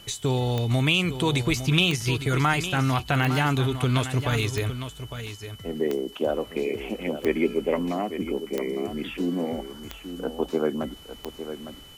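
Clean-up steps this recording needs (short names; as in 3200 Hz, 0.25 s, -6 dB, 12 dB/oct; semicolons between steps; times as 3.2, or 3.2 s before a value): de-click; notch 3000 Hz, Q 30; expander -35 dBFS, range -21 dB; inverse comb 0.857 s -10.5 dB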